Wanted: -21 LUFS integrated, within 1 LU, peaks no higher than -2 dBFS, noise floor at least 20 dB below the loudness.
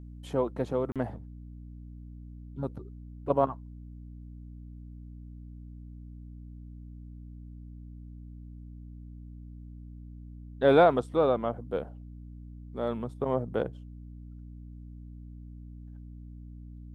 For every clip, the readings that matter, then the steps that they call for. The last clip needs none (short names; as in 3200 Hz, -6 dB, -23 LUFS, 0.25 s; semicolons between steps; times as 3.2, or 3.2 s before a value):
dropouts 1; longest dropout 37 ms; hum 60 Hz; harmonics up to 300 Hz; hum level -42 dBFS; loudness -28.5 LUFS; peak -10.0 dBFS; loudness target -21.0 LUFS
-> interpolate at 0.92, 37 ms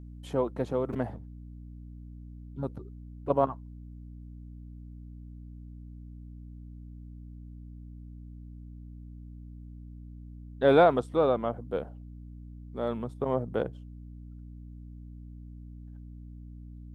dropouts 0; hum 60 Hz; harmonics up to 300 Hz; hum level -42 dBFS
-> de-hum 60 Hz, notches 5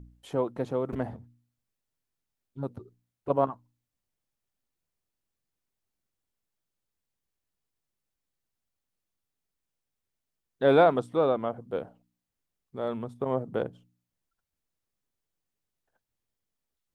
hum none; loudness -28.5 LUFS; peak -10.5 dBFS; loudness target -21.0 LUFS
-> gain +7.5 dB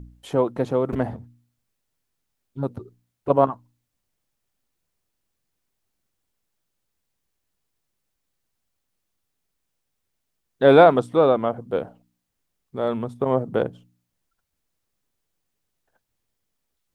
loudness -21.0 LUFS; peak -3.0 dBFS; noise floor -78 dBFS